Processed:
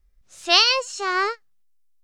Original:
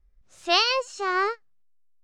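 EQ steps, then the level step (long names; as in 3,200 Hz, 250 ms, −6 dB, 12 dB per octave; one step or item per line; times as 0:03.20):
high-shelf EQ 2,400 Hz +9 dB
0.0 dB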